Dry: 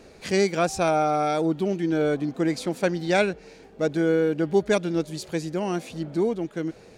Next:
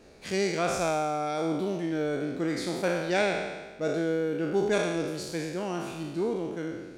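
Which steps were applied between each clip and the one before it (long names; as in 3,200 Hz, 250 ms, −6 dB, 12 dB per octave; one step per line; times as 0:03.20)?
peak hold with a decay on every bin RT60 1.28 s
level −7 dB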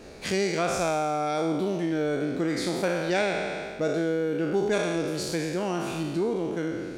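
downward compressor 2 to 1, threshold −37 dBFS, peak gain reduction 9 dB
level +8.5 dB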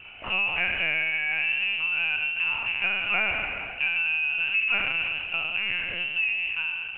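echo through a band-pass that steps 131 ms, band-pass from 870 Hz, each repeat 0.7 octaves, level −11 dB
voice inversion scrambler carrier 3,000 Hz
linear-prediction vocoder at 8 kHz pitch kept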